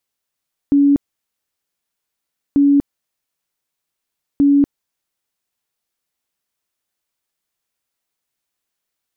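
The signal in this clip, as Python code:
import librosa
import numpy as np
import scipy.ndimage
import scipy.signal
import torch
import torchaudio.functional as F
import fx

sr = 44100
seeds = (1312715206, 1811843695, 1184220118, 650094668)

y = fx.tone_burst(sr, hz=283.0, cycles=68, every_s=1.84, bursts=3, level_db=-8.5)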